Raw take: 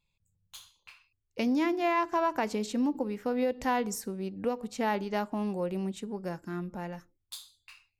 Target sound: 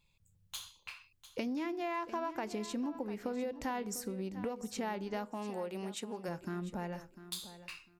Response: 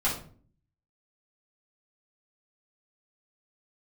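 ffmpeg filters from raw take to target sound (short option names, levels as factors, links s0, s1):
-filter_complex "[0:a]asplit=3[s0][s1][s2];[s0]afade=t=out:st=5.29:d=0.02[s3];[s1]highpass=f=660:p=1,afade=t=in:st=5.29:d=0.02,afade=t=out:st=6.27:d=0.02[s4];[s2]afade=t=in:st=6.27:d=0.02[s5];[s3][s4][s5]amix=inputs=3:normalize=0,acompressor=threshold=0.00708:ratio=4,aecho=1:1:699|1398:0.2|0.0399,volume=1.88"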